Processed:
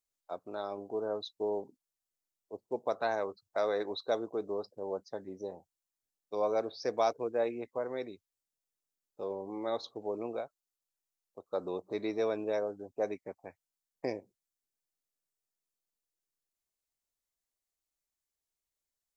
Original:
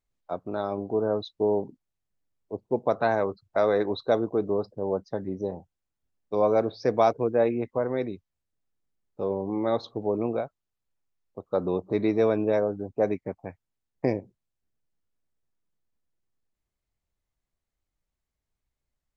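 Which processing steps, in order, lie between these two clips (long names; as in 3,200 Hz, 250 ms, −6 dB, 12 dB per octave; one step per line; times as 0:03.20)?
bass and treble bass −12 dB, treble +11 dB
level −7.5 dB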